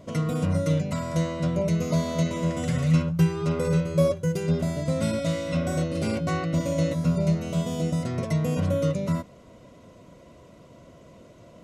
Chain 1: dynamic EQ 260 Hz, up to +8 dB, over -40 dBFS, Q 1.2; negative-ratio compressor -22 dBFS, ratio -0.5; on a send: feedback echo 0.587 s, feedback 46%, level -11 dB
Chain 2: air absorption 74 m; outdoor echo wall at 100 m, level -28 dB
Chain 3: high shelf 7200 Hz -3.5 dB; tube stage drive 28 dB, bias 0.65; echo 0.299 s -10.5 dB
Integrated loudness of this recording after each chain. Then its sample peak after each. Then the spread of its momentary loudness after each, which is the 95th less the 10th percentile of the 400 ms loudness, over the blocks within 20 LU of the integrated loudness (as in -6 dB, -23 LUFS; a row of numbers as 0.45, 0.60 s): -24.0, -26.0, -32.0 LUFS; -8.5, -10.0, -23.0 dBFS; 11, 5, 2 LU